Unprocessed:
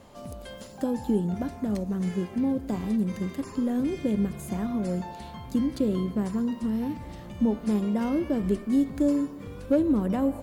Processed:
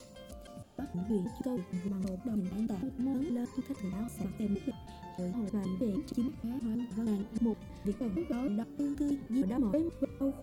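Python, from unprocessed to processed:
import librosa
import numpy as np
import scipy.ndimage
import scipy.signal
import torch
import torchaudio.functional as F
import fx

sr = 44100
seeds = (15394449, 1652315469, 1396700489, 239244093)

y = fx.block_reorder(x, sr, ms=157.0, group=5)
y = fx.notch_cascade(y, sr, direction='rising', hz=0.5)
y = F.gain(torch.from_numpy(y), -7.0).numpy()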